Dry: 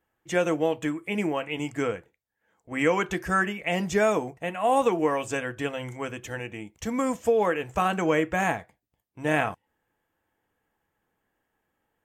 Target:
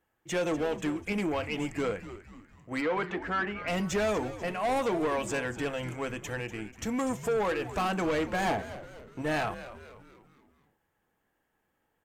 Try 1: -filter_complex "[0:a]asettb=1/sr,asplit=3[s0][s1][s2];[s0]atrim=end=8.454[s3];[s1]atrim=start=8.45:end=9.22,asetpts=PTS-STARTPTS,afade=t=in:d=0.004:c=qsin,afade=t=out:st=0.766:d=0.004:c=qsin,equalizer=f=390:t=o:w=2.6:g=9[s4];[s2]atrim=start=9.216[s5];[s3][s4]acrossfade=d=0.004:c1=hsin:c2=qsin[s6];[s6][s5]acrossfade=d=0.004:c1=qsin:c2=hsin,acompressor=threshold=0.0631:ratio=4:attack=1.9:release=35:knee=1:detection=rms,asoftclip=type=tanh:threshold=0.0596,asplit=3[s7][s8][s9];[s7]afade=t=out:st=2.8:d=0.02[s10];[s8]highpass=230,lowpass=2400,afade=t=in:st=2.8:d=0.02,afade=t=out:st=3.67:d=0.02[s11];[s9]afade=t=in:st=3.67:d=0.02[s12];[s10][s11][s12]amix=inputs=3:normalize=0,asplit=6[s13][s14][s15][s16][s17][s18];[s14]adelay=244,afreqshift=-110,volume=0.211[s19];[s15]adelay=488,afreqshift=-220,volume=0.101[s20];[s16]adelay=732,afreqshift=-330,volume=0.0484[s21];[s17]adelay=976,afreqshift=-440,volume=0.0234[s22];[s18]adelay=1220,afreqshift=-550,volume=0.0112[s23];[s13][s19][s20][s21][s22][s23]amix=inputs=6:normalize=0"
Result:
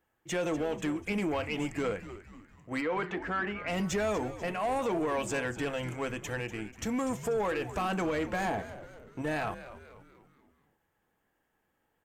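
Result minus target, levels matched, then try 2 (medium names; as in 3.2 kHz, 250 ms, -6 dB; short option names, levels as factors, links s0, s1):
compression: peak gain reduction +10.5 dB
-filter_complex "[0:a]asettb=1/sr,asplit=3[s0][s1][s2];[s0]atrim=end=8.454[s3];[s1]atrim=start=8.45:end=9.22,asetpts=PTS-STARTPTS,afade=t=in:d=0.004:c=qsin,afade=t=out:st=0.766:d=0.004:c=qsin,equalizer=f=390:t=o:w=2.6:g=9[s4];[s2]atrim=start=9.216[s5];[s3][s4]acrossfade=d=0.004:c1=hsin:c2=qsin[s6];[s6][s5]acrossfade=d=0.004:c1=qsin:c2=hsin,asoftclip=type=tanh:threshold=0.0596,asplit=3[s7][s8][s9];[s7]afade=t=out:st=2.8:d=0.02[s10];[s8]highpass=230,lowpass=2400,afade=t=in:st=2.8:d=0.02,afade=t=out:st=3.67:d=0.02[s11];[s9]afade=t=in:st=3.67:d=0.02[s12];[s10][s11][s12]amix=inputs=3:normalize=0,asplit=6[s13][s14][s15][s16][s17][s18];[s14]adelay=244,afreqshift=-110,volume=0.211[s19];[s15]adelay=488,afreqshift=-220,volume=0.101[s20];[s16]adelay=732,afreqshift=-330,volume=0.0484[s21];[s17]adelay=976,afreqshift=-440,volume=0.0234[s22];[s18]adelay=1220,afreqshift=-550,volume=0.0112[s23];[s13][s19][s20][s21][s22][s23]amix=inputs=6:normalize=0"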